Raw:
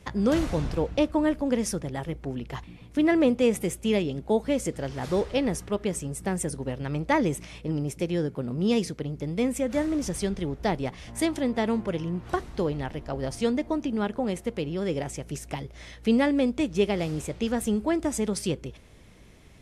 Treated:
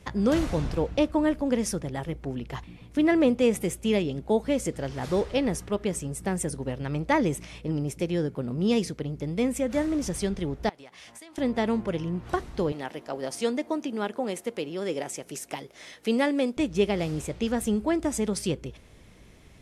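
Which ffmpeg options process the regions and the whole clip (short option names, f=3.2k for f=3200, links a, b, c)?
-filter_complex "[0:a]asettb=1/sr,asplit=3[a][b][c];[a]atrim=end=10.694[d];[b]atrim=start=10.69:end=11.38,asetpts=PTS-STARTPTS,afade=t=in:d=0.004:c=qsin,afade=t=out:st=0.686:d=0.004:c=qsin,highpass=f=1k:p=1,acompressor=threshold=-42dB:ratio=20:attack=3.2:release=140:knee=1:detection=peak[e];[c]atrim=start=11.376[f];[d][e]acrossfade=d=0.004:c1=hsin:c2=qsin[g];[g][f]acrossfade=d=0.004:c1=qsin:c2=hsin,asettb=1/sr,asplit=3[h][i][j];[h]atrim=end=12.724[k];[i]atrim=start=12.72:end=16.57,asetpts=PTS-STARTPTS,afade=t=in:d=0.004:c=qsin,afade=t=out:st=3.846:d=0.004:c=qsin,highpass=270,highshelf=f=7k:g=6[l];[j]atrim=start=16.566[m];[k][l]acrossfade=d=0.004:c1=hsin:c2=qsin[n];[n][m]acrossfade=d=0.004:c1=qsin:c2=hsin"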